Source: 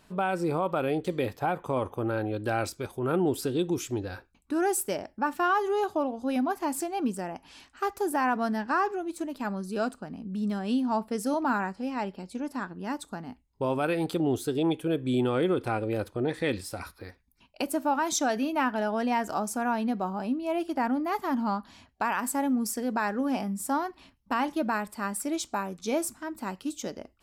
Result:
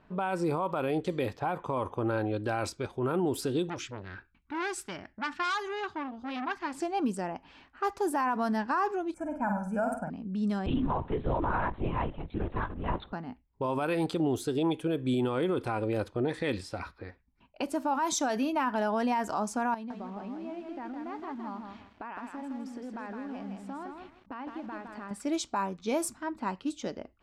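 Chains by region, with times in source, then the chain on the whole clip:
0:03.69–0:06.74: drawn EQ curve 110 Hz 0 dB, 370 Hz −5 dB, 520 Hz −15 dB, 1,600 Hz +6 dB, 2,400 Hz +3 dB, 5,500 Hz +2 dB, 14,000 Hz −7 dB + saturating transformer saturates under 2,700 Hz
0:09.14–0:10.10: Butterworth band-reject 3,900 Hz, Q 0.63 + comb filter 1.3 ms, depth 86% + flutter between parallel walls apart 8.5 metres, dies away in 0.45 s
0:10.66–0:13.13: mu-law and A-law mismatch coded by mu + linear-prediction vocoder at 8 kHz whisper
0:19.74–0:25.11: parametric band 310 Hz +4 dB 0.64 octaves + downward compressor 4 to 1, threshold −40 dBFS + feedback echo at a low word length 163 ms, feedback 35%, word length 9 bits, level −3.5 dB
whole clip: low-pass that shuts in the quiet parts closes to 1,900 Hz, open at −23 dBFS; dynamic equaliser 1,000 Hz, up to +7 dB, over −46 dBFS, Q 4.8; brickwall limiter −21 dBFS

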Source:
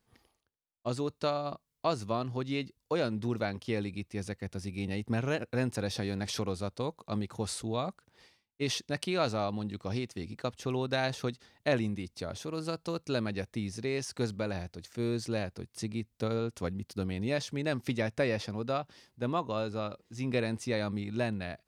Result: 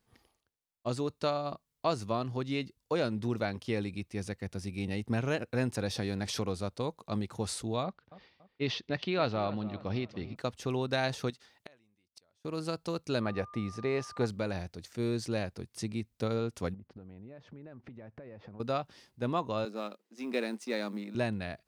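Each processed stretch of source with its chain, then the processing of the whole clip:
0:07.83–0:10.36: low-pass filter 4,300 Hz 24 dB per octave + feedback echo with a low-pass in the loop 284 ms, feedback 39%, low-pass 2,800 Hz, level −16 dB
0:11.30–0:12.45: low-shelf EQ 370 Hz −11 dB + gate with flip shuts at −35 dBFS, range −31 dB
0:13.20–0:14.25: drawn EQ curve 310 Hz 0 dB, 800 Hz +7 dB, 9,500 Hz −11 dB + steady tone 1,200 Hz −47 dBFS
0:16.74–0:18.60: low-pass filter 1,400 Hz + downward compressor 16 to 1, threshold −44 dBFS
0:19.65–0:21.15: mu-law and A-law mismatch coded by A + Chebyshev high-pass filter 200 Hz, order 5 + one half of a high-frequency compander decoder only
whole clip: no processing

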